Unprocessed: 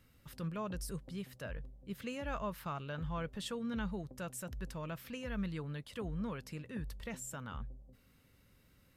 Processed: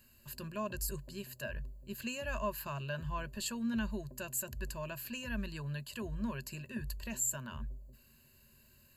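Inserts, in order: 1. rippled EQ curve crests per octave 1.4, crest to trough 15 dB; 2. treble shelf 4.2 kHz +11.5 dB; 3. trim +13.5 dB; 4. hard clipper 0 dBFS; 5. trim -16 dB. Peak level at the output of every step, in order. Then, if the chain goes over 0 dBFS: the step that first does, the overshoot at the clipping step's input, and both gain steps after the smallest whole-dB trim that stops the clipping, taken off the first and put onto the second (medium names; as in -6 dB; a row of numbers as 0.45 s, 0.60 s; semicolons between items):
-21.5 dBFS, -19.0 dBFS, -5.5 dBFS, -5.5 dBFS, -21.5 dBFS; nothing clips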